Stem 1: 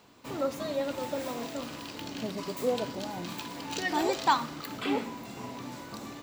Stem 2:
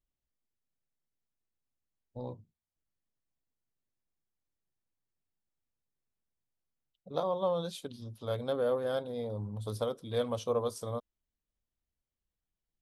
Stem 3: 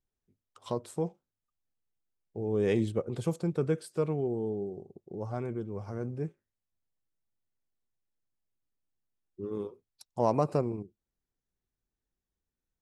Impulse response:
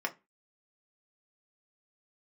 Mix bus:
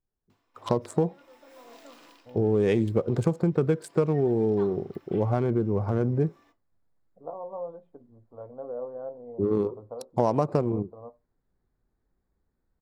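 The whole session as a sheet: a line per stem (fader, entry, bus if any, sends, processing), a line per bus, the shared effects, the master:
-13.0 dB, 0.30 s, send -11 dB, HPF 310 Hz 12 dB/oct; auto duck -23 dB, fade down 0.25 s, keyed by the third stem
-4.0 dB, 0.10 s, send -7 dB, ladder low-pass 1000 Hz, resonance 35%
+1.5 dB, 0.00 s, no send, Wiener smoothing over 15 samples; AGC gain up to 12.5 dB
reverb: on, RT60 0.25 s, pre-delay 3 ms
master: compressor 5:1, threshold -20 dBFS, peak gain reduction 10.5 dB

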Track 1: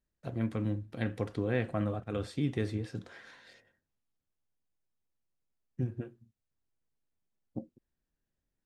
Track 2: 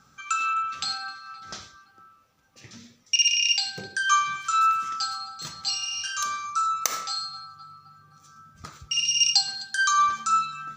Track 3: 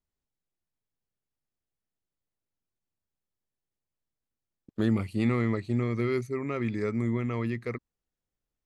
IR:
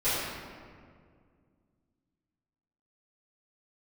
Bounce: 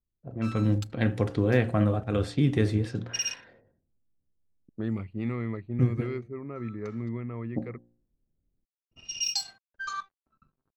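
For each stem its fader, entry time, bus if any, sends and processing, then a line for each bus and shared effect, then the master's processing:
-4.5 dB, 0.00 s, no send, de-hum 58.54 Hz, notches 15; AGC gain up to 11.5 dB
-1.0 dB, 0.00 s, muted 3.45–6.02, no send, step gate "..xx...xxx.x" 72 bpm -12 dB; metallic resonator 61 Hz, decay 0.23 s, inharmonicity 0.008; crossover distortion -42.5 dBFS; auto duck -11 dB, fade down 1.65 s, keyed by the third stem
-7.0 dB, 0.00 s, no send, bell 5400 Hz -7 dB 0.77 oct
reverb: off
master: low-pass opened by the level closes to 420 Hz, open at -25 dBFS; low shelf 180 Hz +4 dB

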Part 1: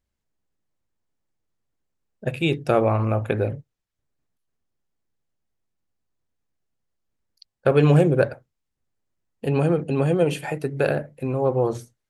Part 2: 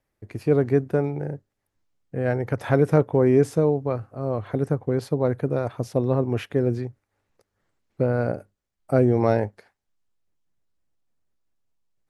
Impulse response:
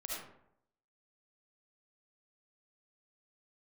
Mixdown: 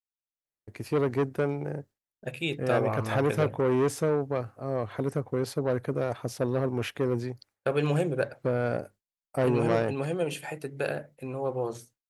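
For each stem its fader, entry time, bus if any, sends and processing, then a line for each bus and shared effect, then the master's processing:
-7.5 dB, 0.00 s, no send, dry
-0.5 dB, 0.45 s, no send, tube stage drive 17 dB, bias 0.25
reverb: off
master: tilt +1.5 dB/oct; gate with hold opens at -45 dBFS

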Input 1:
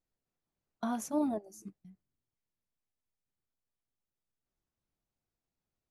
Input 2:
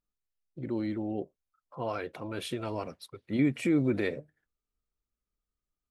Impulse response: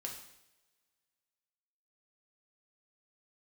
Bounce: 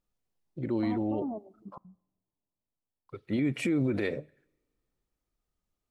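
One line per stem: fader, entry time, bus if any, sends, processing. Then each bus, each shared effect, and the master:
-0.5 dB, 0.00 s, send -17 dB, steep low-pass 1100 Hz 48 dB/oct; limiter -29.5 dBFS, peak gain reduction 7 dB
+3.0 dB, 0.00 s, muted 1.78–3.09, send -21 dB, high shelf 10000 Hz -4.5 dB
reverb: on, pre-delay 3 ms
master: limiter -20.5 dBFS, peak gain reduction 8 dB

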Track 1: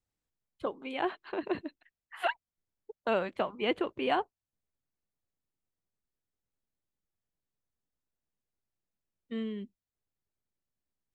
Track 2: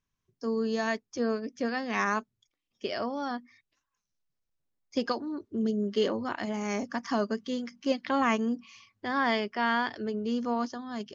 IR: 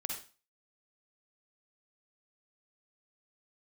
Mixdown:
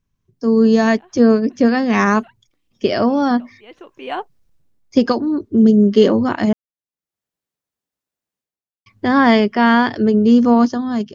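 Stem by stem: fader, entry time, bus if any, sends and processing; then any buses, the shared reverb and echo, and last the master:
-5.5 dB, 0.00 s, no send, HPF 210 Hz 6 dB/oct; auto duck -21 dB, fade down 0.50 s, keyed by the second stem
+2.0 dB, 0.00 s, muted 6.53–8.86, no send, low shelf 420 Hz +12 dB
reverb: off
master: AGC gain up to 12 dB

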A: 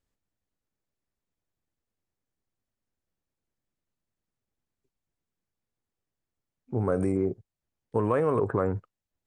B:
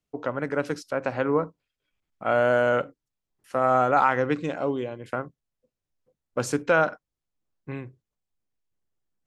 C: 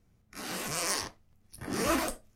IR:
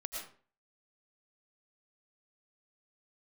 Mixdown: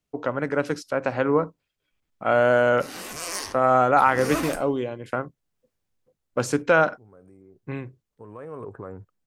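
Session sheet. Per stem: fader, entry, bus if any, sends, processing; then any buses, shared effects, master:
-11.5 dB, 0.25 s, no send, upward compressor, threshold -43 dBFS; auto duck -14 dB, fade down 0.65 s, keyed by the second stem
+2.5 dB, 0.00 s, no send, de-esser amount 60%
0.0 dB, 2.45 s, no send, bell 160 Hz -7.5 dB 0.45 oct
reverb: off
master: dry

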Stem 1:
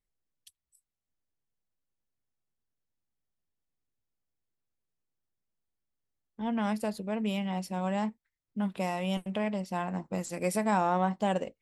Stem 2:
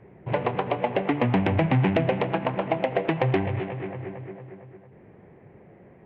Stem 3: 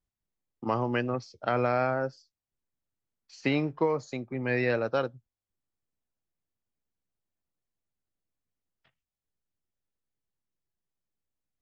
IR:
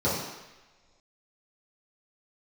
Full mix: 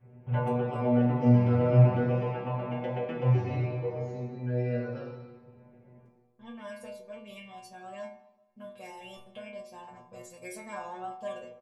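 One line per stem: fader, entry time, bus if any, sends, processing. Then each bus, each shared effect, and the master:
+2.5 dB, 0.00 s, send -23.5 dB, comb 1.8 ms, depth 64%
+2.0 dB, 0.00 s, send -12 dB, auto duck -7 dB, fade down 0.25 s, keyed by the third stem
-5.5 dB, 0.00 s, send -6.5 dB, dry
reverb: on, pre-delay 3 ms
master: metallic resonator 120 Hz, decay 0.53 s, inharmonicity 0.002

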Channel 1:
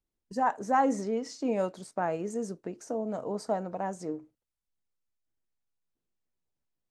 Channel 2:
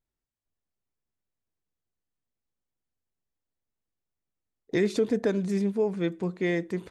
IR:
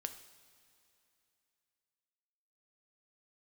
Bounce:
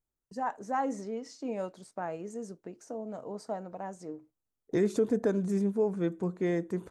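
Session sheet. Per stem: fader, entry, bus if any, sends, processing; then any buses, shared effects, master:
-6.0 dB, 0.00 s, no send, gate with hold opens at -45 dBFS
-2.0 dB, 0.00 s, no send, band shelf 3100 Hz -9 dB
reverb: off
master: dry

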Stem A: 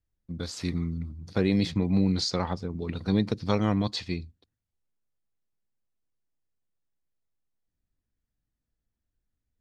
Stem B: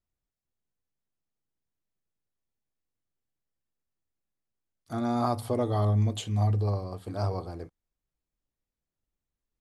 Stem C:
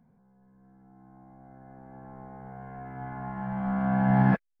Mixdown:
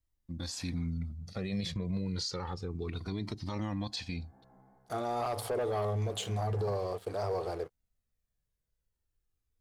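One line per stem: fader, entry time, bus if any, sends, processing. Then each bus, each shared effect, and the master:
+1.0 dB, 0.00 s, no send, high shelf 5200 Hz +5 dB; cascading flanger falling 0.3 Hz
-3.5 dB, 0.00 s, no send, resonant low shelf 340 Hz -7.5 dB, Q 3; sample leveller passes 2
-12.0 dB, 2.40 s, no send, chorus 2.9 Hz, delay 17 ms, depth 5.3 ms; auto duck -8 dB, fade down 0.35 s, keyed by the second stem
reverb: off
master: limiter -26.5 dBFS, peak gain reduction 10.5 dB

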